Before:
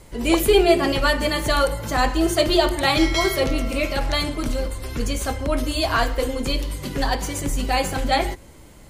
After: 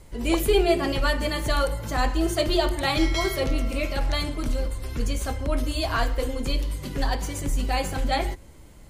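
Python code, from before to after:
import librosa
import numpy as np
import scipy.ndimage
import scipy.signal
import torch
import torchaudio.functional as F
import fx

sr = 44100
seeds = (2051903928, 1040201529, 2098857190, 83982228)

y = fx.low_shelf(x, sr, hz=110.0, db=6.5)
y = F.gain(torch.from_numpy(y), -5.5).numpy()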